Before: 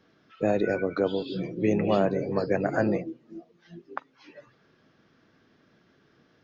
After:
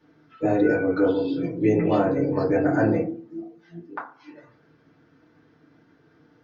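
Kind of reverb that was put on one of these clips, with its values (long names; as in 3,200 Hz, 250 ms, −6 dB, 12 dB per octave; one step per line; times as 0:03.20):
feedback delay network reverb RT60 0.39 s, low-frequency decay 1.2×, high-frequency decay 0.3×, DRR −7 dB
level −5.5 dB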